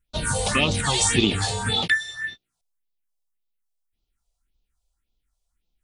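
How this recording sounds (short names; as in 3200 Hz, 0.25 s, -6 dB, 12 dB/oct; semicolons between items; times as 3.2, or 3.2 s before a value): phasing stages 4, 1.8 Hz, lowest notch 250–1700 Hz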